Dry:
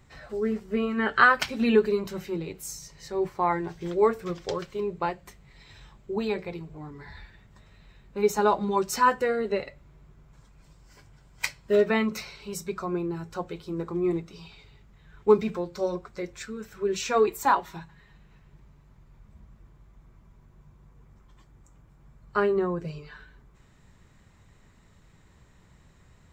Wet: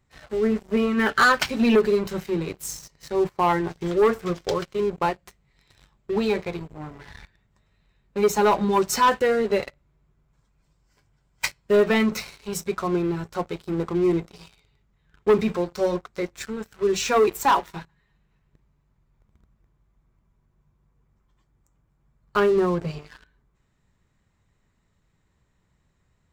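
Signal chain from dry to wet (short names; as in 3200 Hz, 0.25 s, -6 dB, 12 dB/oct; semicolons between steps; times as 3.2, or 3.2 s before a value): sample leveller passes 3; gain -5.5 dB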